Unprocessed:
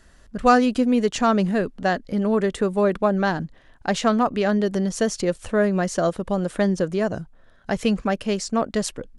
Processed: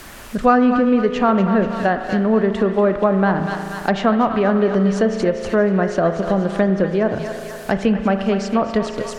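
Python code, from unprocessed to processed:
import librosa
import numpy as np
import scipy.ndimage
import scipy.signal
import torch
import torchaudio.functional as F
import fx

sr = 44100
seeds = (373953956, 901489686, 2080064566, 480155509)

p1 = fx.echo_thinned(x, sr, ms=241, feedback_pct=58, hz=840.0, wet_db=-8)
p2 = fx.quant_dither(p1, sr, seeds[0], bits=6, dither='triangular')
p3 = p1 + (p2 * librosa.db_to_amplitude(-10.0))
p4 = fx.env_lowpass_down(p3, sr, base_hz=2000.0, full_db=-15.0)
p5 = fx.rev_spring(p4, sr, rt60_s=1.8, pass_ms=(36,), chirp_ms=50, drr_db=8.5)
p6 = fx.band_squash(p5, sr, depth_pct=40)
y = p6 * librosa.db_to_amplitude(1.0)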